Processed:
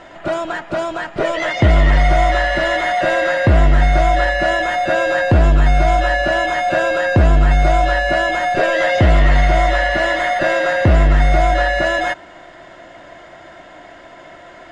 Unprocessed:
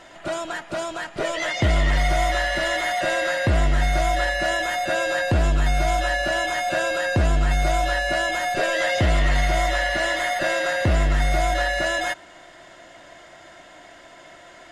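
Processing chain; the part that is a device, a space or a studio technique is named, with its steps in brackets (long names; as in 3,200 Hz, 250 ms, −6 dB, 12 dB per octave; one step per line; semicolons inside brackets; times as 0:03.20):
through cloth (low-pass filter 9,000 Hz 12 dB per octave; high-shelf EQ 3,500 Hz −13 dB)
level +8 dB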